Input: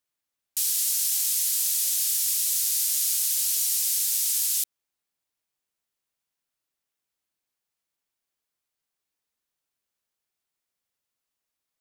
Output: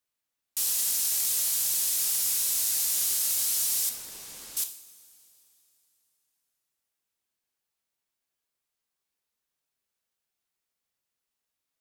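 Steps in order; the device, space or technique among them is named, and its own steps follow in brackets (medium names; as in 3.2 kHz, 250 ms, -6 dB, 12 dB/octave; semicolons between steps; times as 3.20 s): saturation between pre-emphasis and de-emphasis (treble shelf 12 kHz +9.5 dB; saturation -14.5 dBFS, distortion -18 dB; treble shelf 12 kHz -9.5 dB); 3.89–4.57 s: low-pass 1 kHz 6 dB/octave; two-slope reverb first 0.53 s, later 3.2 s, from -16 dB, DRR 5.5 dB; trim -1.5 dB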